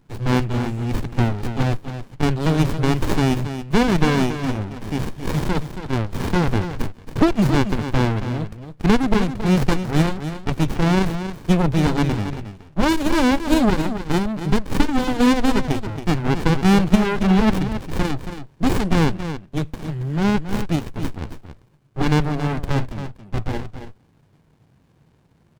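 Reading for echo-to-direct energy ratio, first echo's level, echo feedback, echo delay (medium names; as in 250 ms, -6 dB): -10.0 dB, -10.0 dB, no regular repeats, 275 ms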